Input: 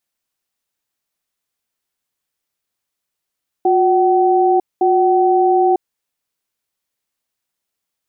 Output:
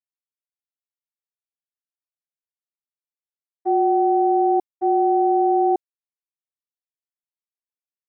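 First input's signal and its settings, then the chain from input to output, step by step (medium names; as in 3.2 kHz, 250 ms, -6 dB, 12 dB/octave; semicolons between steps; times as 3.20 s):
cadence 361 Hz, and 758 Hz, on 0.95 s, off 0.21 s, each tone -13 dBFS 2.19 s
expander -8 dBFS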